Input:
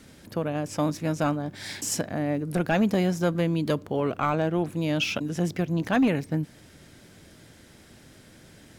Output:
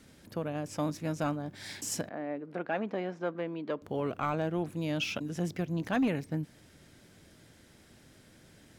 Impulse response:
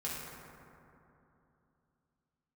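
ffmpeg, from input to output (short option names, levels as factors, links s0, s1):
-filter_complex "[0:a]asettb=1/sr,asplit=3[s0][s1][s2];[s0]atrim=end=2.094[s3];[s1]atrim=start=2.09:end=3.82,asetpts=PTS-STARTPTS,afade=t=in:d=0.004:c=qsin,afade=t=out:st=1.726:d=0.004:c=qsin,highpass=330,lowpass=2200[s4];[s2]atrim=start=3.816[s5];[s3][s4]acrossfade=d=0.004:c1=hsin:c2=qsin[s6];[s6][s5]acrossfade=d=0.004:c1=qsin:c2=hsin,volume=0.473"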